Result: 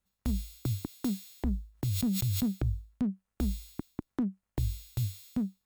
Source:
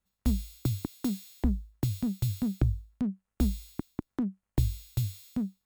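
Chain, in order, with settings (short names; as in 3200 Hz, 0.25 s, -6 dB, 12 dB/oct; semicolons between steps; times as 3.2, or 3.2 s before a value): limiter -21.5 dBFS, peak gain reduction 7.5 dB; 1.72–2.46 sustainer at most 27 dB/s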